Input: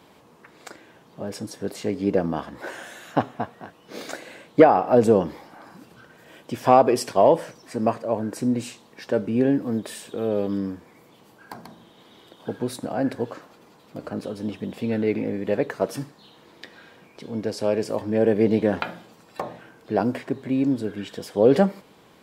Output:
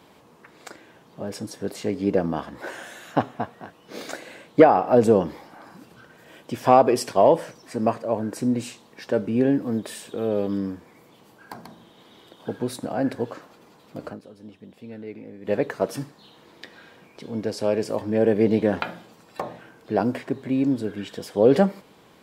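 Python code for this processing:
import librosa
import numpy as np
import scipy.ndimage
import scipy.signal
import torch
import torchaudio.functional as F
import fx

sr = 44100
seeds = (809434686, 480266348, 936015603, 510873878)

y = fx.edit(x, sr, fx.fade_down_up(start_s=14.09, length_s=1.42, db=-14.0, fade_s=0.12, curve='qua'), tone=tone)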